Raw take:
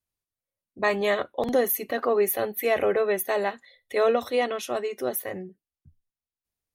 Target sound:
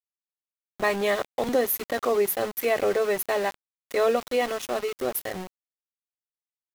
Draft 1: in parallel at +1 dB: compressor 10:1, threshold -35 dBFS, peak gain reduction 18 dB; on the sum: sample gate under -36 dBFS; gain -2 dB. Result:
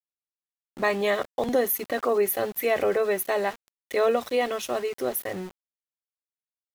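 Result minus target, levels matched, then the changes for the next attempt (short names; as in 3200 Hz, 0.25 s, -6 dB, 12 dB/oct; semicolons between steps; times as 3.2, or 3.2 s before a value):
sample gate: distortion -8 dB
change: sample gate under -29.5 dBFS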